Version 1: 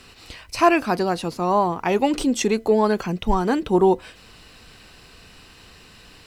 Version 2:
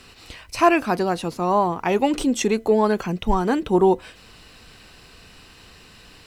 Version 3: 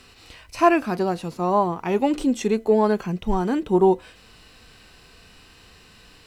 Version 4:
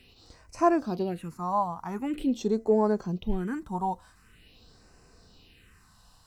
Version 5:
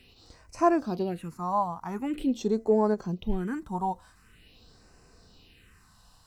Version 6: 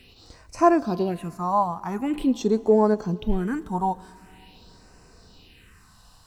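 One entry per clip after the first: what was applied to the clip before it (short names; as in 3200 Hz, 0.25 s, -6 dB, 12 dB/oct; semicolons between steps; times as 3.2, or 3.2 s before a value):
dynamic EQ 4700 Hz, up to -4 dB, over -51 dBFS, Q 4.5
harmonic-percussive split percussive -8 dB
phaser stages 4, 0.45 Hz, lowest notch 370–3300 Hz; gain -5.5 dB
ending taper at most 490 dB/s
Schroeder reverb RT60 3.3 s, combs from 27 ms, DRR 20 dB; gain +5 dB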